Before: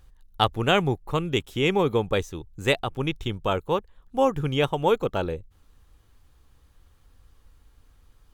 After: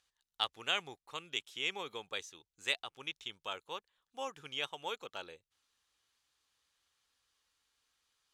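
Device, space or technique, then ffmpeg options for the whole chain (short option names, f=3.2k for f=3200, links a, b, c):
piezo pickup straight into a mixer: -af "lowpass=5.2k,aderivative,volume=1dB"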